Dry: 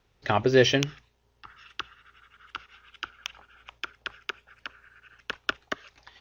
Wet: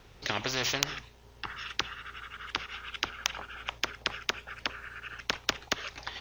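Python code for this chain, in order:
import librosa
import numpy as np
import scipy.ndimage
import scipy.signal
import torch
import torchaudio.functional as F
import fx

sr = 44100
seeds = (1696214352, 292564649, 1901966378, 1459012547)

y = fx.spectral_comp(x, sr, ratio=4.0)
y = F.gain(torch.from_numpy(y), 3.5).numpy()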